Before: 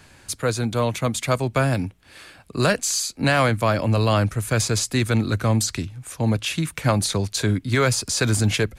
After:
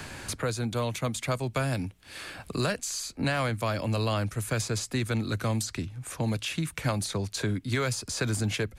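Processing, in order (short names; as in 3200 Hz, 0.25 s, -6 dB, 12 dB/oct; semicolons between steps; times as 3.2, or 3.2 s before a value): three-band squash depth 70%; gain -8.5 dB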